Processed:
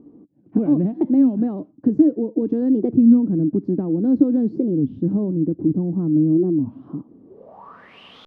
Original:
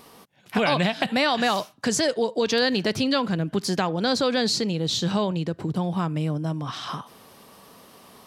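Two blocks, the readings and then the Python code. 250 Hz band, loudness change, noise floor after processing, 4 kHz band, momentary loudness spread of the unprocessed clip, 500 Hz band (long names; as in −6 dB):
+10.5 dB, +5.0 dB, −52 dBFS, below −25 dB, 7 LU, −0.5 dB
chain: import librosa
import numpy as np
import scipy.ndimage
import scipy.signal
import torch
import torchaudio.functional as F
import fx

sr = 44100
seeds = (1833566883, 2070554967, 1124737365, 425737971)

y = fx.filter_sweep_lowpass(x, sr, from_hz=300.0, to_hz=2900.0, start_s=7.24, end_s=8.0, q=7.9)
y = fx.record_warp(y, sr, rpm=33.33, depth_cents=250.0)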